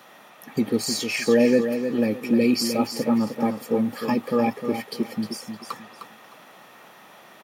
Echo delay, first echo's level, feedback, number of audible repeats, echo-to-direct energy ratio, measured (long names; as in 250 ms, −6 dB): 307 ms, −8.0 dB, 26%, 3, −7.5 dB